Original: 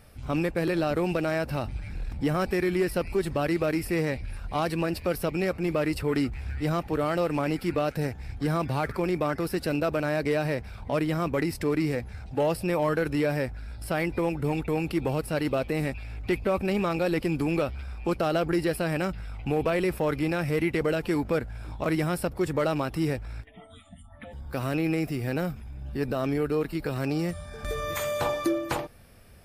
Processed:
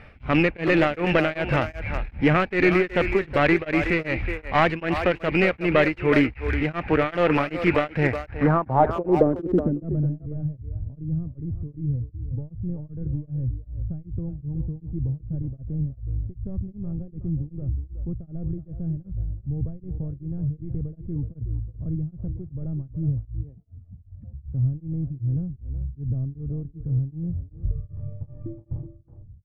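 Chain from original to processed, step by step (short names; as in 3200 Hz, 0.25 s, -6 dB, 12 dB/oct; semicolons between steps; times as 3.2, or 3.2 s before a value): tracing distortion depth 0.42 ms; low-pass sweep 2300 Hz -> 110 Hz, 7.97–10.29; speakerphone echo 0.37 s, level -8 dB; beating tremolo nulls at 2.6 Hz; gain +7.5 dB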